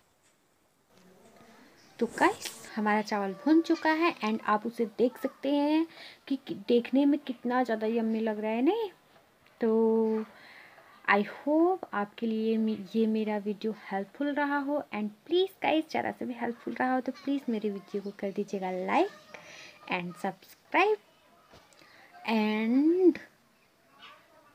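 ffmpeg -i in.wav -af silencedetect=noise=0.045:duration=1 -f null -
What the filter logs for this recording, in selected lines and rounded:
silence_start: 0.00
silence_end: 2.01 | silence_duration: 2.01
silence_start: 20.94
silence_end: 22.28 | silence_duration: 1.34
silence_start: 23.16
silence_end: 24.55 | silence_duration: 1.39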